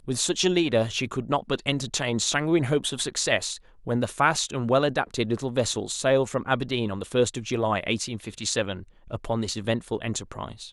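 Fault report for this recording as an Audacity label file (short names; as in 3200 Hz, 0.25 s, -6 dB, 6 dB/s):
4.370000	4.370000	gap 2.6 ms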